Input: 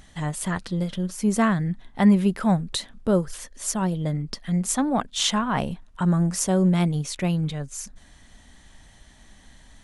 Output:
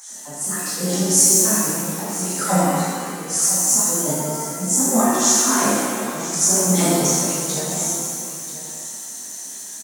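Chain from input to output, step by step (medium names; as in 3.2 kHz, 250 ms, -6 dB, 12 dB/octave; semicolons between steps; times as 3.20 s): resonant high shelf 4.5 kHz +14 dB, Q 3; slow attack 455 ms; LFO high-pass sine 5.8 Hz 230–3500 Hz; on a send: delay 985 ms -14 dB; on the sum: pitch-shifted reverb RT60 1.9 s, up +7 st, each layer -8 dB, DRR -10.5 dB; trim -2.5 dB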